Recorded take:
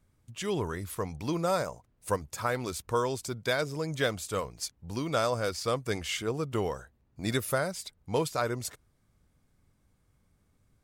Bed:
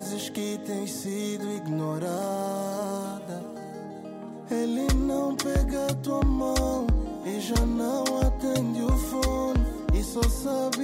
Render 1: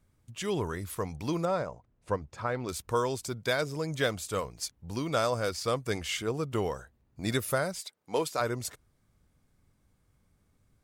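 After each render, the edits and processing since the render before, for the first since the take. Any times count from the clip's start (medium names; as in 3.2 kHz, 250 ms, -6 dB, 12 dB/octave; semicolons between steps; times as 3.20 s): 1.45–2.69 s: tape spacing loss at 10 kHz 21 dB; 7.79–8.39 s: high-pass 480 Hz -> 190 Hz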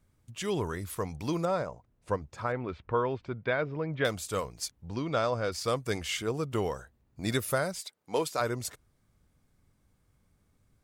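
2.52–4.05 s: low-pass 2.7 kHz 24 dB/octave; 4.88–5.52 s: distance through air 140 m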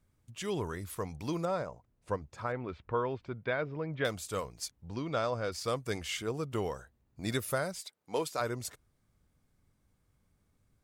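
trim -3.5 dB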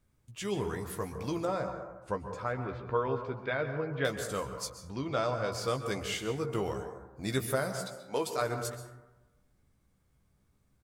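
doubling 15 ms -7 dB; plate-style reverb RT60 1.1 s, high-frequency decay 0.3×, pre-delay 115 ms, DRR 7.5 dB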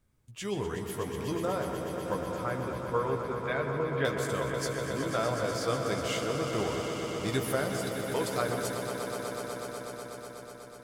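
echo with a slow build-up 123 ms, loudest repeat 5, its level -10 dB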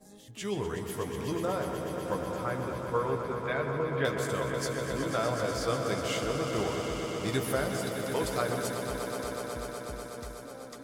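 add bed -21 dB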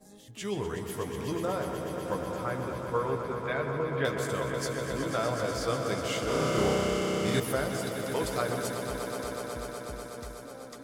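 6.24–7.40 s: flutter echo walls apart 5.5 m, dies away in 0.94 s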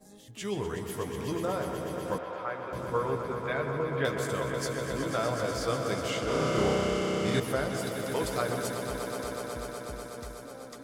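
2.18–2.73 s: three-band isolator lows -14 dB, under 430 Hz, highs -20 dB, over 3.9 kHz; 6.10–7.77 s: treble shelf 11 kHz -11 dB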